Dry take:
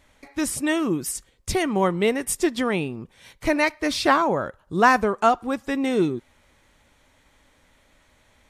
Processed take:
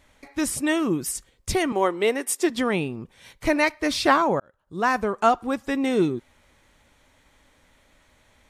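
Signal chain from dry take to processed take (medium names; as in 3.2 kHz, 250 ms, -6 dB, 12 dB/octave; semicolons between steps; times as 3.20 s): 1.72–2.50 s: high-pass 270 Hz 24 dB/octave; 4.40–5.33 s: fade in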